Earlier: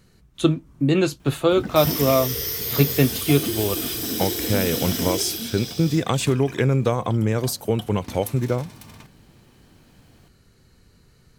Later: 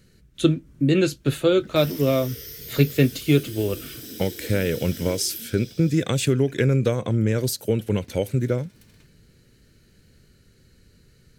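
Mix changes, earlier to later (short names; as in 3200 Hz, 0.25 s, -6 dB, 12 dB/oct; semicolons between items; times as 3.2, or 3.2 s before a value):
background -11.5 dB; master: add band shelf 910 Hz -10 dB 1 oct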